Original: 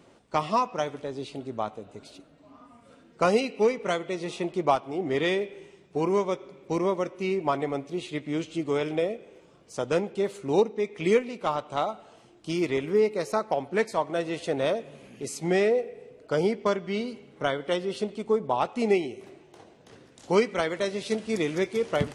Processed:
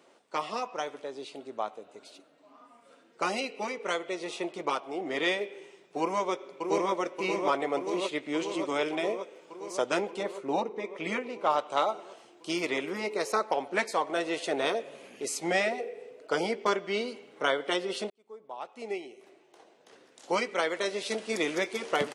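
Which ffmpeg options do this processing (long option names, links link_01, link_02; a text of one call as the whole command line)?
ffmpeg -i in.wav -filter_complex "[0:a]asplit=2[link_01][link_02];[link_02]afade=type=in:start_time=6.02:duration=0.01,afade=type=out:start_time=6.9:duration=0.01,aecho=0:1:580|1160|1740|2320|2900|3480|4060|4640|5220|5800|6380|6960:0.473151|0.354863|0.266148|0.199611|0.149708|0.112281|0.0842108|0.0631581|0.0473686|0.0355264|0.0266448|0.0199836[link_03];[link_01][link_03]amix=inputs=2:normalize=0,asettb=1/sr,asplit=3[link_04][link_05][link_06];[link_04]atrim=end=10.234[link_07];[link_05]atrim=start=10.23:end=11.5,asetpts=PTS-STARTPTS,afade=type=in:duration=0.004:curve=qsin,afade=type=out:start_time=1.266:duration=0.004:curve=qsin,highshelf=frequency=2800:gain=-11[link_08];[link_06]atrim=start=11.496[link_09];[link_07][link_08]acrossfade=duration=0.004:curve1=hsin:curve2=qsin[link_10];[link_10][link_09]acrossfade=duration=0.004:curve1=qsin:curve2=hsin,asplit=2[link_11][link_12];[link_11]atrim=end=18.1,asetpts=PTS-STARTPTS,afade=type=out:start_time=18.096:duration=0.004:curve=hsin[link_13];[link_12]atrim=start=18.1,asetpts=PTS-STARTPTS,afade=type=in:duration=3.38[link_14];[link_13][link_14]concat=n=2:v=0:a=1,highpass=390,afftfilt=real='re*lt(hypot(re,im),0.398)':imag='im*lt(hypot(re,im),0.398)':win_size=1024:overlap=0.75,dynaudnorm=framelen=490:gausssize=21:maxgain=5dB,volume=-2dB" out.wav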